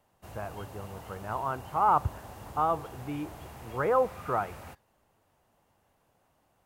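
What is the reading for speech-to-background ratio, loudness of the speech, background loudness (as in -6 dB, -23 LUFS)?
15.5 dB, -30.5 LUFS, -46.0 LUFS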